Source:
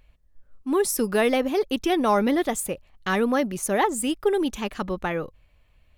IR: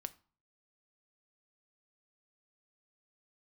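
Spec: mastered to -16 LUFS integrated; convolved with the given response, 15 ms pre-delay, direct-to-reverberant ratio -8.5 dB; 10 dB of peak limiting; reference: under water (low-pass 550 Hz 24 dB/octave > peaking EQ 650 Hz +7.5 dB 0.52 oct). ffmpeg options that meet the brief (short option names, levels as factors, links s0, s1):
-filter_complex "[0:a]alimiter=limit=0.1:level=0:latency=1,asplit=2[s0][s1];[1:a]atrim=start_sample=2205,adelay=15[s2];[s1][s2]afir=irnorm=-1:irlink=0,volume=3.76[s3];[s0][s3]amix=inputs=2:normalize=0,lowpass=f=550:w=0.5412,lowpass=f=550:w=1.3066,equalizer=f=650:t=o:w=0.52:g=7.5,volume=1.68"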